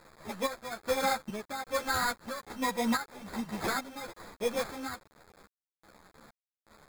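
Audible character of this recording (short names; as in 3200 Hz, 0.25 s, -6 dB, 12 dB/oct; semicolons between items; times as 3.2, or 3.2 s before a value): aliases and images of a low sample rate 2900 Hz, jitter 0%; chopped level 1.2 Hz, depth 65%, duty 55%; a quantiser's noise floor 8-bit, dither none; a shimmering, thickened sound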